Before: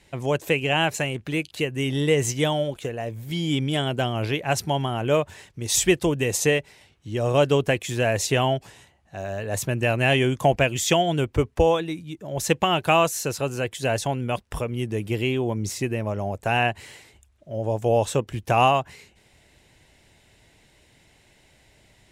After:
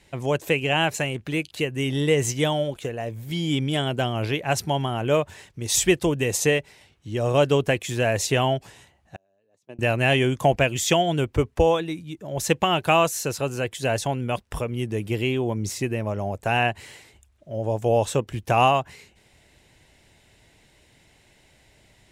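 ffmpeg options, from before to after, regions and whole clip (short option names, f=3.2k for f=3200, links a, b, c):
-filter_complex "[0:a]asettb=1/sr,asplit=3[a][b][c];[a]atrim=end=9.164[d];[b]atrim=start=9.16:end=9.79,asetpts=PTS-STARTPTS,afade=t=in:d=0.004:c=qsin,afade=t=out:st=0.626:d=0.004:c=qsin,equalizer=f=1.6k:w=0.44:g=-13.5,agate=range=-30dB:threshold=-25dB:ratio=16:release=100:detection=peak,highpass=300,lowpass=4.6k[e];[c]atrim=start=9.786[f];[d][e]acrossfade=d=0.004:c1=hsin:c2=qsin[g];[g][f]acrossfade=d=0.004:c1=qsin:c2=hsin"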